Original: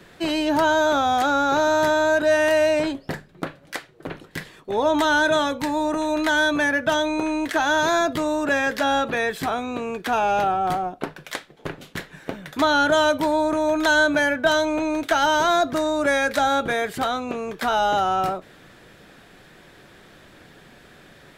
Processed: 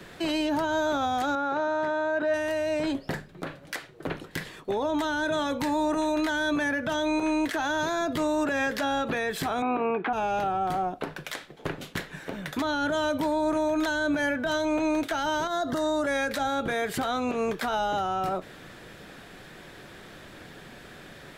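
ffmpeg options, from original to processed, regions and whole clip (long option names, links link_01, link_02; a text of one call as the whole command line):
ffmpeg -i in.wav -filter_complex "[0:a]asettb=1/sr,asplit=3[link_01][link_02][link_03];[link_01]atrim=end=1.354[link_04];[link_02]atrim=start=1.35:end=2.34,asetpts=PTS-STARTPTS,afade=type=in:duration=0.004:curve=qsin,afade=type=out:start_time=0.986:duration=0.004:curve=qsin,lowpass=1900,aemphasis=mode=production:type=bsi[link_05];[link_03]atrim=start=2.336[link_06];[link_04][link_05]acrossfade=duration=0.004:curve1=hsin:curve2=qsin[link_07];[link_07][link_06]acrossfade=duration=0.004:curve1=qsin:curve2=hsin,asettb=1/sr,asplit=3[link_08][link_09][link_10];[link_08]atrim=end=9.624[link_11];[link_09]atrim=start=9.62:end=10.13,asetpts=PTS-STARTPTS,afade=type=in:duration=0.004:curve=qsin,afade=type=out:start_time=0.506:duration=0.004:curve=qsin,highpass=220,equalizer=frequency=240:width_type=q:width=4:gain=-4,equalizer=frequency=550:width_type=q:width=4:gain=-9,equalizer=frequency=790:width_type=q:width=4:gain=6,equalizer=frequency=1800:width_type=q:width=4:gain=-7,lowpass=frequency=2300:width=0.5412,lowpass=frequency=2300:width=1.3066,acontrast=89[link_12];[link_10]atrim=start=10.126[link_13];[link_11][link_12]acrossfade=duration=0.004:curve1=hsin:curve2=qsin[link_14];[link_14][link_13]acrossfade=duration=0.004:curve1=qsin:curve2=hsin,asettb=1/sr,asplit=3[link_15][link_16][link_17];[link_15]atrim=end=15.474[link_18];[link_16]atrim=start=15.47:end=16.07,asetpts=PTS-STARTPTS,afade=type=in:duration=0.004:curve=qsin,afade=type=out:start_time=0.596:duration=0.004:curve=qsin,acompressor=threshold=-24dB:ratio=5:attack=3.2:release=140:knee=1:detection=peak,asuperstop=centerf=2400:order=4:qfactor=3.6[link_19];[link_17]atrim=start=16.066[link_20];[link_18][link_19]acrossfade=duration=0.004:curve1=hsin:curve2=qsin[link_21];[link_21][link_20]acrossfade=duration=0.004:curve1=qsin:curve2=hsin,acrossover=split=370[link_22][link_23];[link_23]acompressor=threshold=-22dB:ratio=6[link_24];[link_22][link_24]amix=inputs=2:normalize=0,alimiter=limit=-22dB:level=0:latency=1:release=97,volume=2.5dB" out.wav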